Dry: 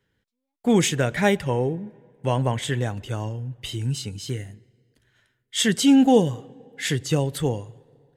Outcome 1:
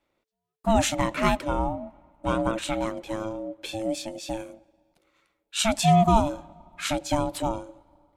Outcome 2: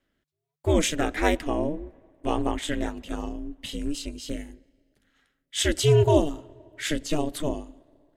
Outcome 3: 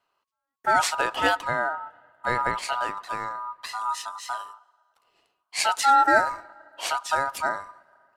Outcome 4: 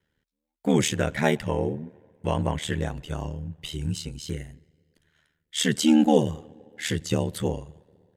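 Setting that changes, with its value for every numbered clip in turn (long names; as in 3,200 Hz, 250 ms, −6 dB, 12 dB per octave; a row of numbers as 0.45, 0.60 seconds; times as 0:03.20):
ring modulation, frequency: 440, 150, 1,100, 38 Hertz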